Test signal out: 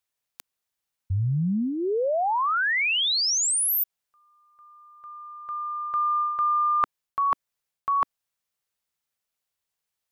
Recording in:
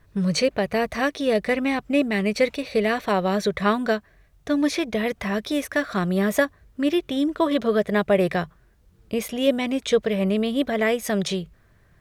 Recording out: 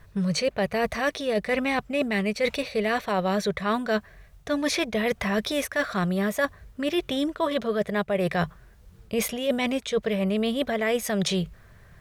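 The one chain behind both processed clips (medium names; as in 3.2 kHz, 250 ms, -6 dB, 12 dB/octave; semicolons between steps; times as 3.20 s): peaking EQ 300 Hz -8 dB 0.53 oct; reverse; compression 10:1, threshold -28 dBFS; reverse; trim +6.5 dB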